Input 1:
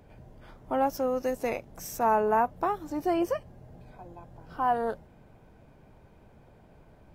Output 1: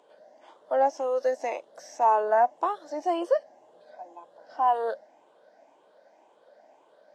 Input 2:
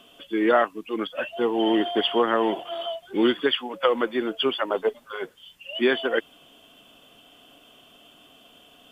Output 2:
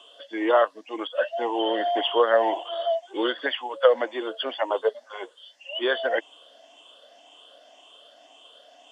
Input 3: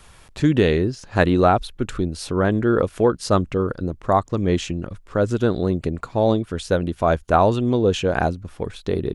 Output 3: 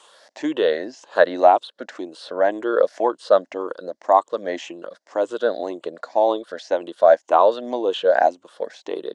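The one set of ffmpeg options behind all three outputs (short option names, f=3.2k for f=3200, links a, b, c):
-filter_complex "[0:a]afftfilt=real='re*pow(10,9/40*sin(2*PI*(0.67*log(max(b,1)*sr/1024/100)/log(2)-(1.9)*(pts-256)/sr)))':imag='im*pow(10,9/40*sin(2*PI*(0.67*log(max(b,1)*sr/1024/100)/log(2)-(1.9)*(pts-256)/sr)))':win_size=1024:overlap=0.75,acrossover=split=3500[a][b];[b]acompressor=threshold=-47dB:ratio=4:attack=1:release=60[c];[a][c]amix=inputs=2:normalize=0,highpass=f=390:w=0.5412,highpass=f=390:w=1.3066,equalizer=f=400:t=q:w=4:g=-9,equalizer=f=600:t=q:w=4:g=5,equalizer=f=1.3k:t=q:w=4:g=-7,equalizer=f=2.4k:t=q:w=4:g=-10,lowpass=f=7.8k:w=0.5412,lowpass=f=7.8k:w=1.3066,volume=2dB"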